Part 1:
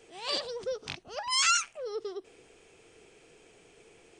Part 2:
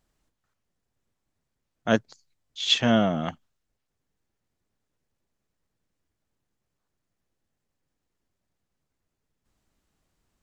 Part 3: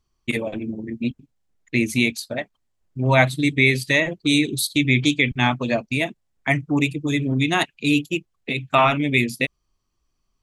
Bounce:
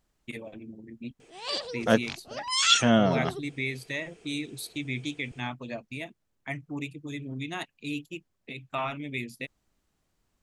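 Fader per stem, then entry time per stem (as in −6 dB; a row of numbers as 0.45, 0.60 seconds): 0.0, −0.5, −15.0 decibels; 1.20, 0.00, 0.00 seconds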